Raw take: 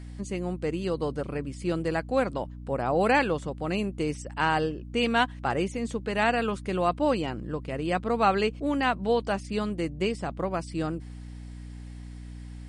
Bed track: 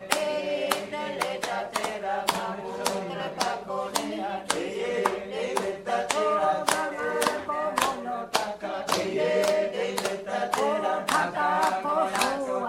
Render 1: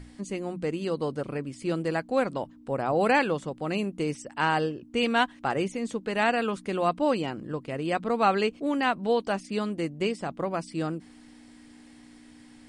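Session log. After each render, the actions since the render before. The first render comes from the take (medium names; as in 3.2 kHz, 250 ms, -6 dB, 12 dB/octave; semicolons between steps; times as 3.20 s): hum notches 60/120/180 Hz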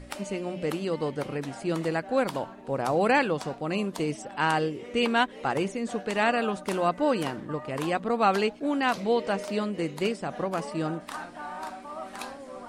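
add bed track -13.5 dB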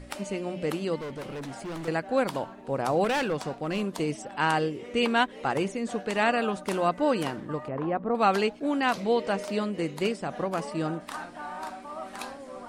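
0.96–1.88 s: overload inside the chain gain 33.5 dB; 3.04–3.86 s: hard clipper -23 dBFS; 7.68–8.15 s: low-pass 1.2 kHz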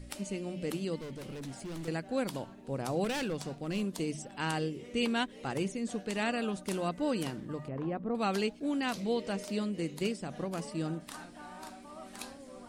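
peaking EQ 1 kHz -11.5 dB 2.9 oct; hum notches 50/100/150 Hz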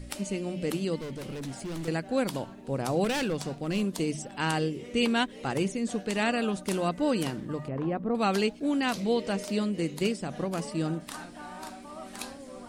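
trim +5 dB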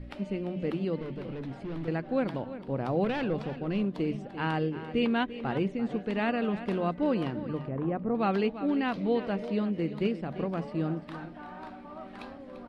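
distance through air 380 m; delay 343 ms -13 dB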